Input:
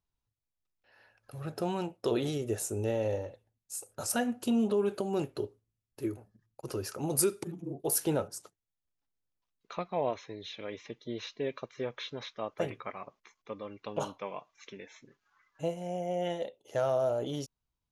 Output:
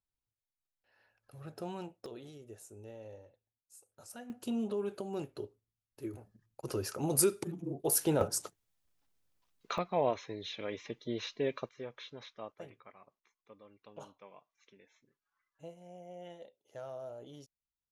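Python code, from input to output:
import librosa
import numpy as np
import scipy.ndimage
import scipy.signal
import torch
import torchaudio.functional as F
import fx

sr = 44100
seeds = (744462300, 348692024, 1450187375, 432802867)

y = fx.gain(x, sr, db=fx.steps((0.0, -8.5), (2.06, -18.0), (4.3, -7.0), (6.14, 0.0), (8.21, 8.5), (9.78, 1.0), (11.69, -8.0), (12.52, -15.5)))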